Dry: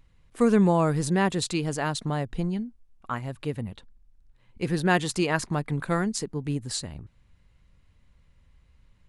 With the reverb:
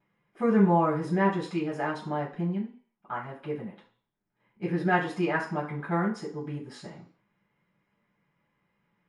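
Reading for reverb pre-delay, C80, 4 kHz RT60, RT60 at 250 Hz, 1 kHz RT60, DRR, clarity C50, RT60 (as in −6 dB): 3 ms, 12.5 dB, 0.55 s, 0.30 s, 0.55 s, −20.5 dB, 8.0 dB, 0.50 s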